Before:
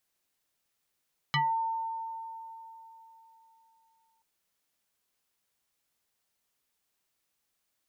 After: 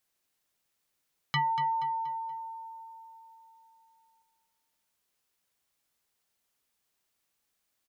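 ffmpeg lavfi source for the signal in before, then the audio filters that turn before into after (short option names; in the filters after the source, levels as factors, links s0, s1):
-f lavfi -i "aevalsrc='0.0708*pow(10,-3*t/3.58)*sin(2*PI*903*t+3.4*pow(10,-3*t/0.23)*sin(2*PI*1.16*903*t))':d=2.88:s=44100"
-af "aecho=1:1:238|476|714|952:0.316|0.12|0.0457|0.0174"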